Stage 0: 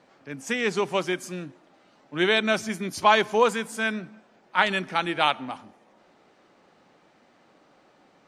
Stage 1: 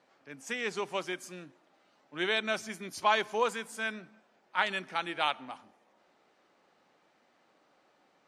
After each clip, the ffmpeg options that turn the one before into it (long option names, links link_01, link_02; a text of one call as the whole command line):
ffmpeg -i in.wav -af "lowshelf=frequency=290:gain=-9,volume=-7dB" out.wav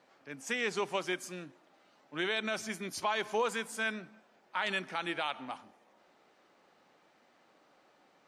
ffmpeg -i in.wav -af "alimiter=limit=-23.5dB:level=0:latency=1:release=63,volume=2dB" out.wav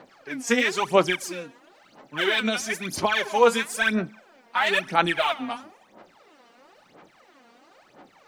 ffmpeg -i in.wav -af "aphaser=in_gain=1:out_gain=1:delay=4.3:decay=0.77:speed=1:type=sinusoidal,volume=7dB" out.wav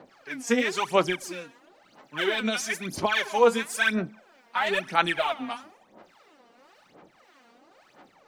ffmpeg -i in.wav -filter_complex "[0:a]acrossover=split=880[link_01][link_02];[link_01]aeval=exprs='val(0)*(1-0.5/2+0.5/2*cos(2*PI*1.7*n/s))':channel_layout=same[link_03];[link_02]aeval=exprs='val(0)*(1-0.5/2-0.5/2*cos(2*PI*1.7*n/s))':channel_layout=same[link_04];[link_03][link_04]amix=inputs=2:normalize=0" out.wav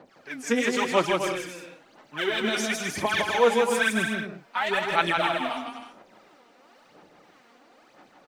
ffmpeg -i in.wav -af "aecho=1:1:160|256|313.6|348.2|368.9:0.631|0.398|0.251|0.158|0.1,volume=-1dB" out.wav